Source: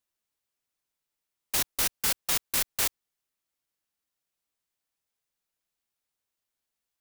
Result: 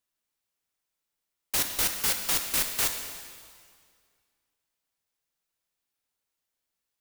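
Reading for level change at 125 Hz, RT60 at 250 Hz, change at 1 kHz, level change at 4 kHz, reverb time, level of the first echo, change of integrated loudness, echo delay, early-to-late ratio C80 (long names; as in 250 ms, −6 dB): +1.0 dB, 2.0 s, +1.0 dB, +1.5 dB, 2.0 s, no echo audible, +1.0 dB, no echo audible, 7.0 dB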